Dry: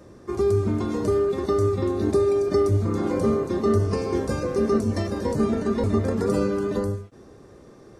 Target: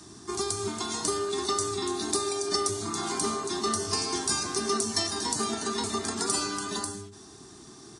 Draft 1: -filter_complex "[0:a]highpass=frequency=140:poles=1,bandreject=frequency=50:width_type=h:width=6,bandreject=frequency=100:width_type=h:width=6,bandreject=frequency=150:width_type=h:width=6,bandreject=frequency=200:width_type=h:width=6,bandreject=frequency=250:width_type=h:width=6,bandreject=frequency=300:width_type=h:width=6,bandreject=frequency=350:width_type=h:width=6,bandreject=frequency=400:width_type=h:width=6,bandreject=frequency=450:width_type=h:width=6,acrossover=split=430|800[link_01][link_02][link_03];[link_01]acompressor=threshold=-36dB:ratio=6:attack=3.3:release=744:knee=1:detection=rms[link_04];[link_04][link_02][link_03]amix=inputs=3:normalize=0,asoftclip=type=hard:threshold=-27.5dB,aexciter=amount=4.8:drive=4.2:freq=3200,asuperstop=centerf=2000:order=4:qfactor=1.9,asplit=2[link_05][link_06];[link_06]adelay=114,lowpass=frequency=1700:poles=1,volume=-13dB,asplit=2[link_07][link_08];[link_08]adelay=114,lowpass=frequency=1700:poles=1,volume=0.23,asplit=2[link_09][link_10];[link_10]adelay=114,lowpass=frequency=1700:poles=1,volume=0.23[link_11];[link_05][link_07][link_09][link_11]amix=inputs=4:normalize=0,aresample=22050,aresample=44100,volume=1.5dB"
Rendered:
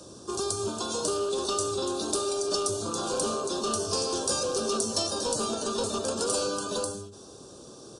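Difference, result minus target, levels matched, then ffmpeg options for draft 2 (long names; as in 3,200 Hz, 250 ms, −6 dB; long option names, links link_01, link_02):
hard clipping: distortion +16 dB; 2,000 Hz band −5.0 dB
-filter_complex "[0:a]highpass=frequency=140:poles=1,bandreject=frequency=50:width_type=h:width=6,bandreject=frequency=100:width_type=h:width=6,bandreject=frequency=150:width_type=h:width=6,bandreject=frequency=200:width_type=h:width=6,bandreject=frequency=250:width_type=h:width=6,bandreject=frequency=300:width_type=h:width=6,bandreject=frequency=350:width_type=h:width=6,bandreject=frequency=400:width_type=h:width=6,bandreject=frequency=450:width_type=h:width=6,acrossover=split=430|800[link_01][link_02][link_03];[link_01]acompressor=threshold=-36dB:ratio=6:attack=3.3:release=744:knee=1:detection=rms[link_04];[link_04][link_02][link_03]amix=inputs=3:normalize=0,asoftclip=type=hard:threshold=-21dB,aexciter=amount=4.8:drive=4.2:freq=3200,asuperstop=centerf=530:order=4:qfactor=1.9,asplit=2[link_05][link_06];[link_06]adelay=114,lowpass=frequency=1700:poles=1,volume=-13dB,asplit=2[link_07][link_08];[link_08]adelay=114,lowpass=frequency=1700:poles=1,volume=0.23,asplit=2[link_09][link_10];[link_10]adelay=114,lowpass=frequency=1700:poles=1,volume=0.23[link_11];[link_05][link_07][link_09][link_11]amix=inputs=4:normalize=0,aresample=22050,aresample=44100,volume=1.5dB"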